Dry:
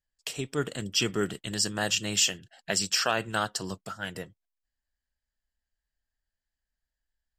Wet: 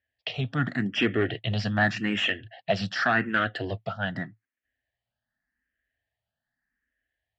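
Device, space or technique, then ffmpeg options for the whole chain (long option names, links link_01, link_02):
barber-pole phaser into a guitar amplifier: -filter_complex "[0:a]asplit=2[link_01][link_02];[link_02]afreqshift=0.85[link_03];[link_01][link_03]amix=inputs=2:normalize=1,asoftclip=type=tanh:threshold=-25.5dB,highpass=89,equalizer=frequency=110:width_type=q:width=4:gain=9,equalizer=frequency=250:width_type=q:width=4:gain=6,equalizer=frequency=410:width_type=q:width=4:gain=-3,equalizer=frequency=690:width_type=q:width=4:gain=7,equalizer=frequency=1000:width_type=q:width=4:gain=-7,equalizer=frequency=1800:width_type=q:width=4:gain=9,lowpass=frequency=3400:width=0.5412,lowpass=frequency=3400:width=1.3066,volume=8dB"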